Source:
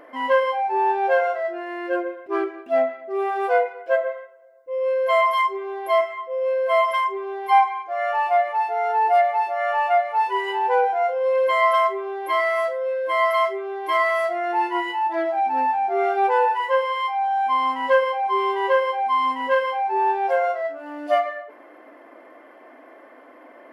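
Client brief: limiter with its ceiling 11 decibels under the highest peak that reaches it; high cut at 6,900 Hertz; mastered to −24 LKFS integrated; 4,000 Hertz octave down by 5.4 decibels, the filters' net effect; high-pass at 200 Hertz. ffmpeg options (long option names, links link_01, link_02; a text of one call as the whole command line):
ffmpeg -i in.wav -af "highpass=200,lowpass=6900,equalizer=frequency=4000:width_type=o:gain=-8,volume=1.5dB,alimiter=limit=-16.5dB:level=0:latency=1" out.wav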